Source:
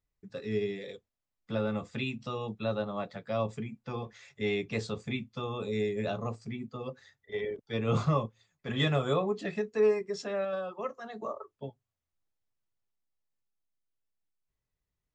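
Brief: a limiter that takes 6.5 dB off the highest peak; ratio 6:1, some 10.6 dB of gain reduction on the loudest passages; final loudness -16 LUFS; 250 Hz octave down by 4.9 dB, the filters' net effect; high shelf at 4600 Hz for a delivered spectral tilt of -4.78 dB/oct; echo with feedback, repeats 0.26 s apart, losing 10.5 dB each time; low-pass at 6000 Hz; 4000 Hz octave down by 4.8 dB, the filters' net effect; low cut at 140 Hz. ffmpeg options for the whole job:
-af "highpass=140,lowpass=6k,equalizer=f=250:t=o:g=-5.5,equalizer=f=4k:t=o:g=-8,highshelf=f=4.6k:g=6,acompressor=threshold=-34dB:ratio=6,alimiter=level_in=6.5dB:limit=-24dB:level=0:latency=1,volume=-6.5dB,aecho=1:1:260|520|780:0.299|0.0896|0.0269,volume=25.5dB"

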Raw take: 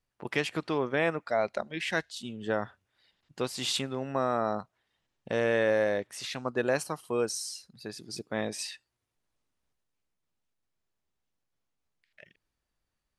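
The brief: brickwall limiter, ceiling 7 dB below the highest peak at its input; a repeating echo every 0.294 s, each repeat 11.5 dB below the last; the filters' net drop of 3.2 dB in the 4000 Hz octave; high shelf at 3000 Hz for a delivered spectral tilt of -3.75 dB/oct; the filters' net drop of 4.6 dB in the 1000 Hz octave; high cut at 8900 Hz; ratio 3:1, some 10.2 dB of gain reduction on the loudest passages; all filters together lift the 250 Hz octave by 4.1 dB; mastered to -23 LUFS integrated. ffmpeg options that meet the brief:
-af "lowpass=8.9k,equalizer=f=250:t=o:g=5.5,equalizer=f=1k:t=o:g=-7.5,highshelf=f=3k:g=5.5,equalizer=f=4k:t=o:g=-8,acompressor=threshold=-36dB:ratio=3,alimiter=level_in=3.5dB:limit=-24dB:level=0:latency=1,volume=-3.5dB,aecho=1:1:294|588|882:0.266|0.0718|0.0194,volume=17dB"

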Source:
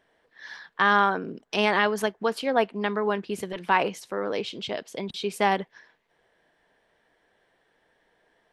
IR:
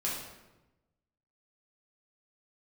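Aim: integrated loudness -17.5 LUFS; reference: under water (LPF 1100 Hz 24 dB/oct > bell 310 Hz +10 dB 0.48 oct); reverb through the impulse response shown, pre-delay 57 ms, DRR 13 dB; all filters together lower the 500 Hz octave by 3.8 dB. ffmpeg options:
-filter_complex "[0:a]equalizer=f=500:t=o:g=-7.5,asplit=2[a][b];[1:a]atrim=start_sample=2205,adelay=57[c];[b][c]afir=irnorm=-1:irlink=0,volume=-18dB[d];[a][d]amix=inputs=2:normalize=0,lowpass=f=1.1k:w=0.5412,lowpass=f=1.1k:w=1.3066,equalizer=f=310:t=o:w=0.48:g=10,volume=12.5dB"

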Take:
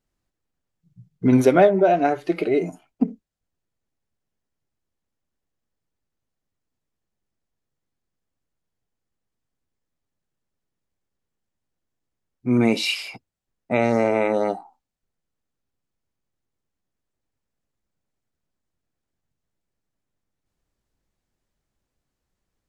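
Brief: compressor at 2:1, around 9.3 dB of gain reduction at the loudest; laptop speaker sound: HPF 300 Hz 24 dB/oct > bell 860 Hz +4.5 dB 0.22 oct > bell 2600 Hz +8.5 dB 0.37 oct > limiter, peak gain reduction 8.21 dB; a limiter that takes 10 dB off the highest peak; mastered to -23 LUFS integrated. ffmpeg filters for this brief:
-af "acompressor=threshold=-28dB:ratio=2,alimiter=limit=-22.5dB:level=0:latency=1,highpass=f=300:w=0.5412,highpass=f=300:w=1.3066,equalizer=f=860:t=o:w=0.22:g=4.5,equalizer=f=2.6k:t=o:w=0.37:g=8.5,volume=12.5dB,alimiter=limit=-12.5dB:level=0:latency=1"

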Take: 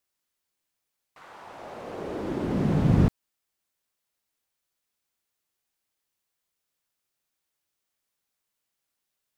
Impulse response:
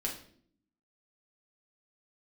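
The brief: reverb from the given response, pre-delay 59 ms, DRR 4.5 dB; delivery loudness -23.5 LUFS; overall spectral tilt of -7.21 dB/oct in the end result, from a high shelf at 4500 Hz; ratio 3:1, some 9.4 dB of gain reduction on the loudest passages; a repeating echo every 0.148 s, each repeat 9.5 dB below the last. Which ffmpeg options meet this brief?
-filter_complex "[0:a]highshelf=f=4.5k:g=6,acompressor=threshold=-28dB:ratio=3,aecho=1:1:148|296|444|592:0.335|0.111|0.0365|0.012,asplit=2[a][b];[1:a]atrim=start_sample=2205,adelay=59[c];[b][c]afir=irnorm=-1:irlink=0,volume=-7dB[d];[a][d]amix=inputs=2:normalize=0,volume=8dB"

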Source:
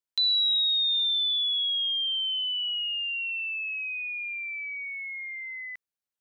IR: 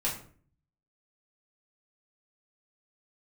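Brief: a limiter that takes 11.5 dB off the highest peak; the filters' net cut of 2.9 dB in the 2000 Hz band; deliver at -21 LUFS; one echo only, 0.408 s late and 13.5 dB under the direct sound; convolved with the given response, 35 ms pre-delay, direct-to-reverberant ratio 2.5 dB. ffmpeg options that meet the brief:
-filter_complex "[0:a]equalizer=f=2k:t=o:g=-4,alimiter=level_in=8dB:limit=-24dB:level=0:latency=1,volume=-8dB,aecho=1:1:408:0.211,asplit=2[a][b];[1:a]atrim=start_sample=2205,adelay=35[c];[b][c]afir=irnorm=-1:irlink=0,volume=-9dB[d];[a][d]amix=inputs=2:normalize=0,volume=10dB"

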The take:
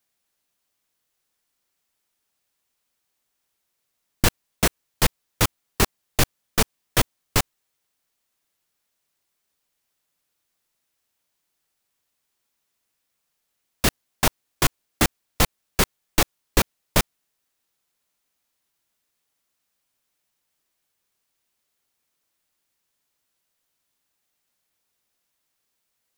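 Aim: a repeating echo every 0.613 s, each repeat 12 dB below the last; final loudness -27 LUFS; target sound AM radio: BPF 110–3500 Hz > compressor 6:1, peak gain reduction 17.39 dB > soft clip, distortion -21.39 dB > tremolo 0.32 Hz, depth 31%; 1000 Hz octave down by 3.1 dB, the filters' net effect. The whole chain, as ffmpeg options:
-af "highpass=110,lowpass=3.5k,equalizer=f=1k:t=o:g=-4,aecho=1:1:613|1226|1839:0.251|0.0628|0.0157,acompressor=threshold=-36dB:ratio=6,asoftclip=threshold=-23dB,tremolo=f=0.32:d=0.31,volume=17.5dB"

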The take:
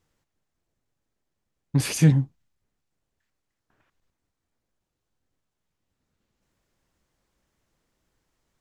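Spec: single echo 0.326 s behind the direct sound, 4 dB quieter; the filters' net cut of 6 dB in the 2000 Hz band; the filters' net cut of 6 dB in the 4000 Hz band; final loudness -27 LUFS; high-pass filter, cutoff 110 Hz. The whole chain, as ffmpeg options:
-af "highpass=110,equalizer=f=2k:t=o:g=-5.5,equalizer=f=4k:t=o:g=-6.5,aecho=1:1:326:0.631,volume=-4.5dB"

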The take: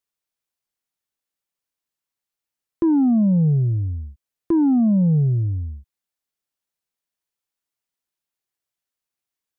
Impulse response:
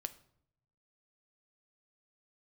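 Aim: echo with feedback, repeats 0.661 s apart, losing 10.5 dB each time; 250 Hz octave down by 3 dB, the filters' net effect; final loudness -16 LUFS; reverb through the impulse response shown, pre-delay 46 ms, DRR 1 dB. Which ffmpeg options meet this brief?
-filter_complex "[0:a]equalizer=f=250:t=o:g=-4,aecho=1:1:661|1322|1983:0.299|0.0896|0.0269,asplit=2[a][b];[1:a]atrim=start_sample=2205,adelay=46[c];[b][c]afir=irnorm=-1:irlink=0,volume=1dB[d];[a][d]amix=inputs=2:normalize=0,volume=3dB"

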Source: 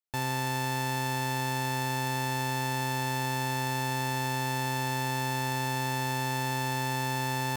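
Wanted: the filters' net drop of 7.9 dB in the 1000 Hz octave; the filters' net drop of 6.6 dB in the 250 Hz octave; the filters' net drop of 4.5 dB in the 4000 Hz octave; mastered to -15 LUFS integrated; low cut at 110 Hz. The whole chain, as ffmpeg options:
-af "highpass=110,equalizer=f=250:t=o:g=-7.5,equalizer=f=1k:t=o:g=-8.5,equalizer=f=4k:t=o:g=-5,volume=19.5dB"

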